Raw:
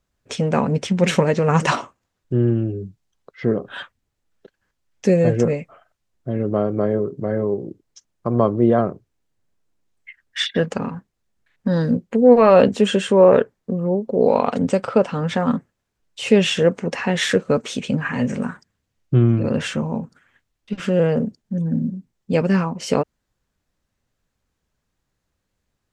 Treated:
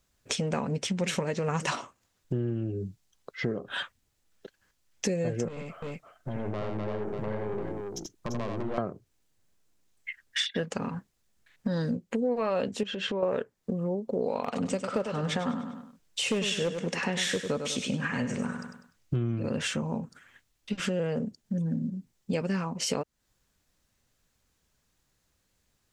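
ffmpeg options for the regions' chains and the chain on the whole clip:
-filter_complex "[0:a]asettb=1/sr,asplit=3[a][b][c];[a]atrim=end=5.484[d];[b]atrim=start=5.48:end=8.78,asetpts=PTS-STARTPTS,afade=t=in:d=0.004:c=qsin,afade=t=out:st=3.296:d=0.004:c=qsin,acompressor=threshold=-23dB:ratio=3:attack=3.2:release=140:knee=1:detection=peak,aeval=exprs='(tanh(22.4*val(0)+0.45)-tanh(0.45))/22.4':c=same,aecho=1:1:84|342:0.631|0.501,atrim=end_sample=145530[e];[c]atrim=start=8.776[f];[d][e]acrossfade=d=0.004:c1=hsin:c2=qsin[g];[g][f]acrossfade=d=0.004:c1=qsin:c2=hsin,asettb=1/sr,asplit=3[h][i][j];[h]atrim=end=12.834[k];[i]atrim=start=12.83:end=13.23,asetpts=PTS-STARTPTS,afade=t=in:d=0.004:c=qsin,afade=t=out:st=0.396:d=0.004:c=qsin,lowpass=f=4.8k:w=0.5412,lowpass=f=4.8k:w=1.3066,acompressor=threshold=-23dB:ratio=5:attack=3.2:release=140:knee=1:detection=peak[l];[j]atrim=start=13.226[m];[k][l]acrossfade=d=0.004:c1=hsin:c2=qsin[n];[n][m]acrossfade=d=0.004:c1=qsin:c2=hsin,asettb=1/sr,asplit=3[o][p][q];[o]atrim=end=14.434[r];[p]atrim=start=14.43:end=19.16,asetpts=PTS-STARTPTS,afade=t=in:d=0.004:c=qsin,afade=t=out:st=4.726:d=0.004:c=qsin,asoftclip=type=hard:threshold=-8dB,aecho=1:1:99|198|297|396:0.355|0.128|0.046|0.0166,atrim=end_sample=208593[s];[q]atrim=start=19.156[t];[r][s]acrossfade=d=0.004:c1=hsin:c2=qsin[u];[u][t]acrossfade=d=0.004:c1=qsin:c2=hsin,highshelf=f=2.8k:g=8.5,acompressor=threshold=-29dB:ratio=4"

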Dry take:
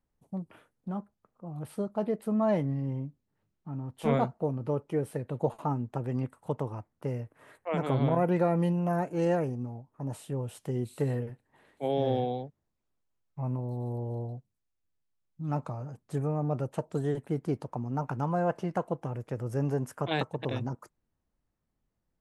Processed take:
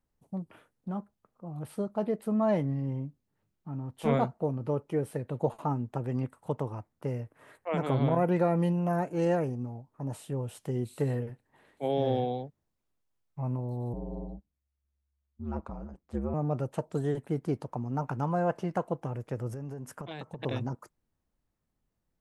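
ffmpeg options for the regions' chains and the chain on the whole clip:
-filter_complex "[0:a]asettb=1/sr,asplit=3[a][b][c];[a]atrim=end=13.934[d];[b]atrim=start=13.93:end=16.34,asetpts=PTS-STARTPTS,afade=t=in:d=0.004:c=qsin,afade=t=out:st=2.406:d=0.004:c=qsin,lowpass=f=2.2k:p=1,aeval=exprs='val(0)*sin(2*PI*69*n/s)':c=same[e];[c]atrim=start=16.336[f];[d][e]acrossfade=d=0.004:c1=hsin:c2=qsin[g];[g][f]acrossfade=d=0.004:c1=qsin:c2=hsin,asettb=1/sr,asplit=3[h][i][j];[h]atrim=end=19.494[k];[i]atrim=start=19.49:end=20.42,asetpts=PTS-STARTPTS,afade=t=in:d=0.004:c=qsin,afade=t=out:st=0.926:d=0.004:c=qsin,equalizer=f=180:w=1.8:g=4,acompressor=threshold=-35dB:ratio=16:attack=3.2:release=140:knee=1:detection=peak[l];[j]atrim=start=20.416[m];[k][l]acrossfade=d=0.004:c1=hsin:c2=qsin[n];[n][m]acrossfade=d=0.004:c1=qsin:c2=hsin"

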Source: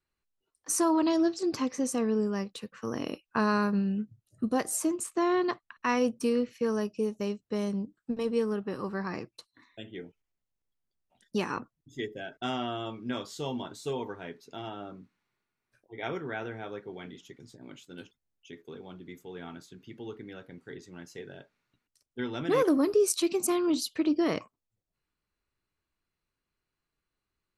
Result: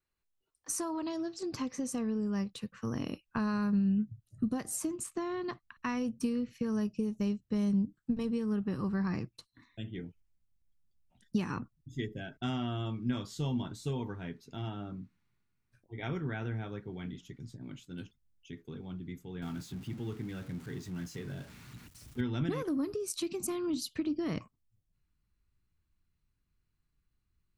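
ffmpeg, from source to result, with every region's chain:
-filter_complex "[0:a]asettb=1/sr,asplit=3[a][b][c];[a]atrim=end=19.424[d];[b]atrim=start=19.42:end=22.21,asetpts=PTS-STARTPTS,afade=t=in:d=0.004:c=qsin,afade=t=out:st=2.786:d=0.004:c=qsin,aeval=exprs='val(0)+0.5*0.00501*sgn(val(0))':c=same,highpass=63[e];[c]atrim=start=22.206[f];[d][e]acrossfade=d=0.004:c1=hsin:c2=qsin[g];[g][f]acrossfade=d=0.004:c1=qsin:c2=hsin,acompressor=threshold=-29dB:ratio=6,asubboost=boost=6:cutoff=190,volume=-3dB"

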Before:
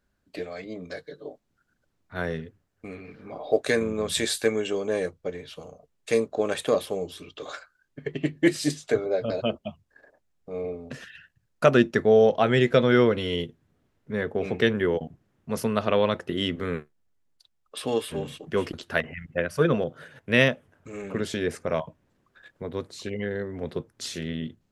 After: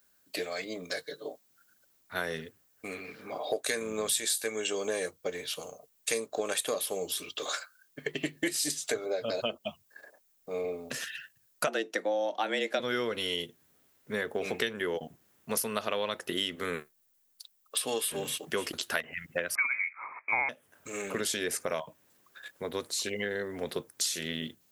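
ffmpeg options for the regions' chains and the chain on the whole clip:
-filter_complex "[0:a]asettb=1/sr,asplit=3[a][b][c];[a]atrim=end=11.674[d];[b]atrim=start=11.67:end=12.8,asetpts=PTS-STARTPTS,afade=t=in:d=0.004:c=qsin,afade=t=out:st=1.126:d=0.004:c=qsin,highshelf=f=9.5k:g=-11.5,afreqshift=96[e];[c]atrim=start=12.796[f];[d][e]acrossfade=d=0.004:c1=hsin:c2=qsin[g];[g][f]acrossfade=d=0.004:c1=qsin:c2=hsin,asettb=1/sr,asplit=3[h][i][j];[h]atrim=end=19.554[k];[i]atrim=start=19.55:end=20.49,asetpts=PTS-STARTPTS,afade=t=in:d=0.004:c=qsin,afade=t=out:st=0.936:d=0.004:c=qsin,highpass=f=360:t=q:w=1.7,tiltshelf=f=690:g=-5.5,lowpass=f=2.3k:t=q:w=0.5098,lowpass=f=2.3k:t=q:w=0.6013,lowpass=f=2.3k:t=q:w=0.9,lowpass=f=2.3k:t=q:w=2.563,afreqshift=-2700[l];[j]atrim=start=20.486[m];[k][l]acrossfade=d=0.004:c1=hsin:c2=qsin[n];[n][m]acrossfade=d=0.004:c1=qsin:c2=hsin,aemphasis=mode=production:type=riaa,acompressor=threshold=-31dB:ratio=5,volume=2.5dB"

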